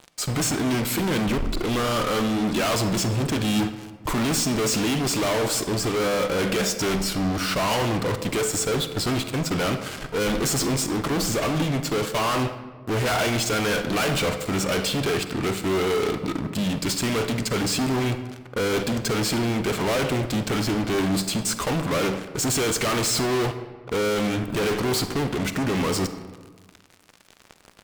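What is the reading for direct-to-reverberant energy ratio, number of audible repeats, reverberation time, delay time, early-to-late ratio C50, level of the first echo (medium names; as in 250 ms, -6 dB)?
9.5 dB, no echo, 1.5 s, no echo, 10.0 dB, no echo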